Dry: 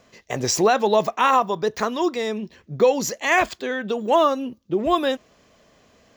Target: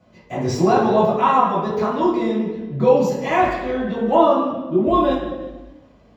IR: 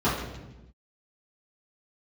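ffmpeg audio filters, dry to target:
-filter_complex "[1:a]atrim=start_sample=2205,asetrate=35721,aresample=44100[link_01];[0:a][link_01]afir=irnorm=-1:irlink=0,volume=-16dB"

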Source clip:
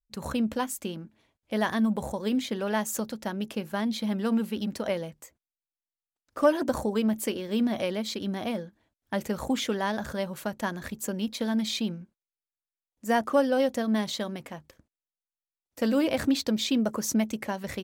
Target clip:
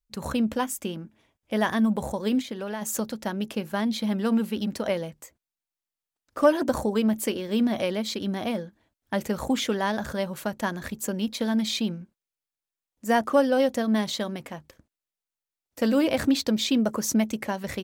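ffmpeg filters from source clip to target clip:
ffmpeg -i in.wav -filter_complex "[0:a]asettb=1/sr,asplit=3[link_01][link_02][link_03];[link_01]atrim=end=0.534[link_04];[link_02]atrim=start=0.53:end=1.87,asetpts=PTS-STARTPTS,afade=type=in:duration=0.004:curve=qsin,afade=type=out:start_time=1.336:duration=0.004:curve=qsin,bandreject=frequency=4200:width=7.9[link_05];[link_03]atrim=start=1.866[link_06];[link_04][link_05]acrossfade=duration=0.004:curve1=hsin:curve2=qsin[link_07];[link_07][link_06]acrossfade=duration=0.004:curve1=qsin:curve2=hsin,asplit=3[link_08][link_09][link_10];[link_08]afade=type=out:start_time=2.41:duration=0.02[link_11];[link_09]acompressor=threshold=-32dB:ratio=12,afade=type=in:start_time=2.41:duration=0.02,afade=type=out:start_time=2.81:duration=0.02[link_12];[link_10]afade=type=in:start_time=2.81:duration=0.02[link_13];[link_11][link_12][link_13]amix=inputs=3:normalize=0,volume=2.5dB" out.wav

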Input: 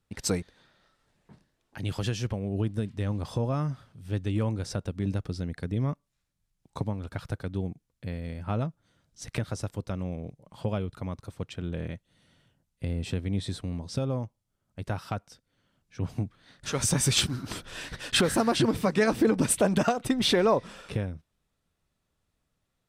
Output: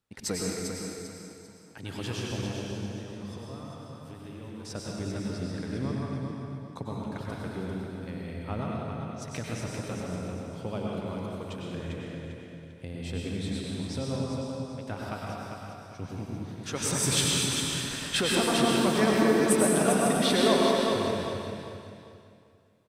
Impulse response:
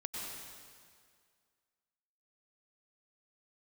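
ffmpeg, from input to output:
-filter_complex "[0:a]lowshelf=frequency=110:gain=-11,asettb=1/sr,asplit=3[link_01][link_02][link_03];[link_01]atrim=end=2.484[link_04];[link_02]atrim=start=2.48:end=4.65,asetpts=PTS-STARTPTS,afade=type=in:duration=0.004:curve=qsin,afade=type=out:start_time=2.166:duration=0.004:curve=qsin,acompressor=threshold=-40dB:ratio=6[link_05];[link_03]atrim=start=4.646[link_06];[link_04][link_05]acrossfade=duration=0.004:curve1=hsin:curve2=qsin[link_07];[link_07][link_06]acrossfade=duration=0.004:curve1=qsin:curve2=hsin,aecho=1:1:396|792|1188|1584:0.501|0.16|0.0513|0.0164[link_08];[1:a]atrim=start_sample=2205[link_09];[link_08][link_09]afir=irnorm=-1:irlink=0"

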